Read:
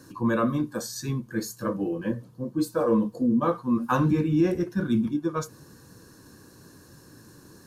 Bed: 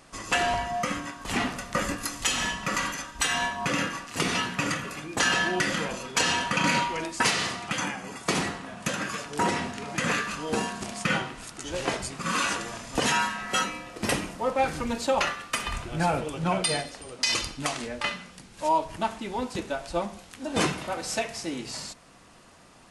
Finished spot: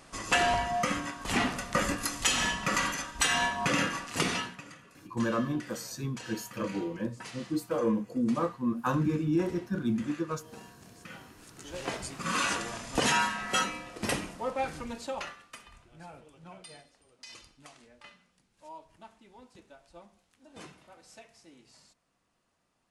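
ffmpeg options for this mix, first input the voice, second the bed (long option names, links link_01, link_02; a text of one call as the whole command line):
ffmpeg -i stem1.wav -i stem2.wav -filter_complex "[0:a]adelay=4950,volume=-5.5dB[link_01];[1:a]volume=19dB,afade=type=out:start_time=4.15:duration=0.47:silence=0.0944061,afade=type=in:start_time=11.21:duration=1.38:silence=0.105925,afade=type=out:start_time=13.46:duration=2.22:silence=0.0841395[link_02];[link_01][link_02]amix=inputs=2:normalize=0" out.wav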